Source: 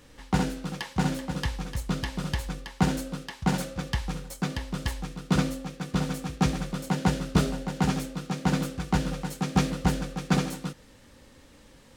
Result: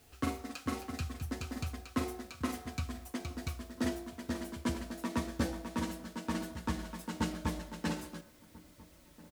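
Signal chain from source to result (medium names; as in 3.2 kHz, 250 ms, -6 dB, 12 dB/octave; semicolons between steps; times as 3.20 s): gliding tape speed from 147% -> 110%; on a send at -11 dB: reverberation RT60 0.95 s, pre-delay 6 ms; on the sum: added noise white -57 dBFS; comb of notches 200 Hz; echo from a far wall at 230 m, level -21 dB; trim -8.5 dB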